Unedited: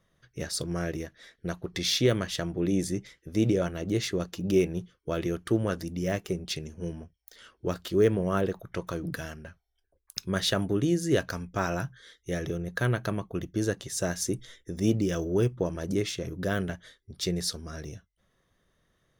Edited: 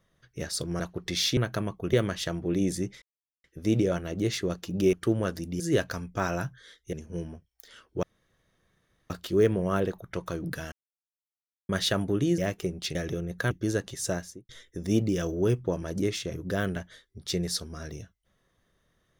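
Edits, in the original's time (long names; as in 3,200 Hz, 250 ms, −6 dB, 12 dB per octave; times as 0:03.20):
0:00.80–0:01.48: remove
0:03.14: splice in silence 0.42 s
0:04.63–0:05.37: remove
0:06.04–0:06.61: swap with 0:10.99–0:12.32
0:07.71: splice in room tone 1.07 s
0:09.33–0:10.30: silence
0:12.88–0:13.44: move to 0:02.05
0:13.98–0:14.42: fade out and dull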